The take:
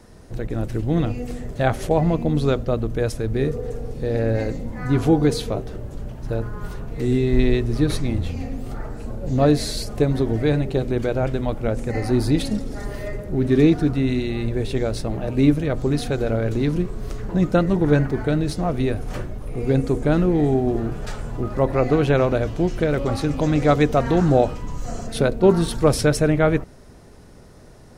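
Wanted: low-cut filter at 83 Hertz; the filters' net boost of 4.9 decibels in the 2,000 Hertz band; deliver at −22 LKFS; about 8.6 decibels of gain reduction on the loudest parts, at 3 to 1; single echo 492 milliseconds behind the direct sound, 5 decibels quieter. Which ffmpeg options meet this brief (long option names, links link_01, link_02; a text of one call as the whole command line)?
ffmpeg -i in.wav -af "highpass=83,equalizer=frequency=2000:width_type=o:gain=6.5,acompressor=threshold=-22dB:ratio=3,aecho=1:1:492:0.562,volume=3.5dB" out.wav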